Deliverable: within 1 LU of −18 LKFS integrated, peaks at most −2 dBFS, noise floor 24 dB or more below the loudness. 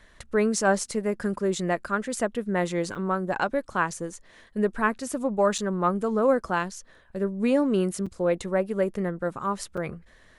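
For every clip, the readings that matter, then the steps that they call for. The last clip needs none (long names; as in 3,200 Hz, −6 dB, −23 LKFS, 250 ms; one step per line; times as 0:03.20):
number of dropouts 4; longest dropout 5.6 ms; integrated loudness −26.5 LKFS; sample peak −9.0 dBFS; target loudness −18.0 LKFS
→ repair the gap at 0:02.95/0:05.58/0:08.06/0:09.77, 5.6 ms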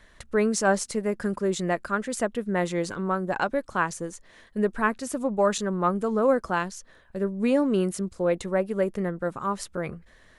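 number of dropouts 0; integrated loudness −26.5 LKFS; sample peak −9.0 dBFS; target loudness −18.0 LKFS
→ level +8.5 dB
brickwall limiter −2 dBFS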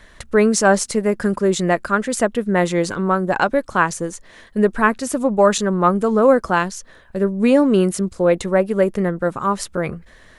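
integrated loudness −18.5 LKFS; sample peak −2.0 dBFS; background noise floor −47 dBFS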